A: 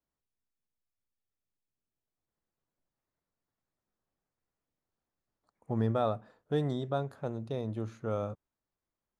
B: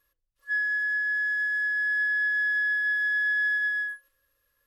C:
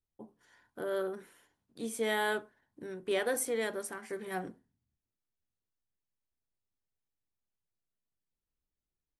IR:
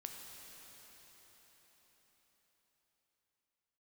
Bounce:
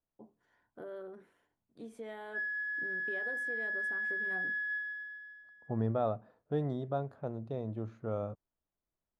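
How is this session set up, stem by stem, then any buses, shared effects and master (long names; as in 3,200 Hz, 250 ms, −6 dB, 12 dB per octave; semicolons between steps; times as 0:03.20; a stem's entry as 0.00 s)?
−2.5 dB, 0.00 s, no send, no processing
−5.5 dB, 1.85 s, no send, automatic ducking −22 dB, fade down 0.75 s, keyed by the first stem
−5.0 dB, 0.00 s, no send, downward compressor 3 to 1, threshold −38 dBFS, peak gain reduction 8.5 dB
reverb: not used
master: low-pass filter 1,300 Hz 6 dB per octave; parametric band 660 Hz +4 dB 0.25 octaves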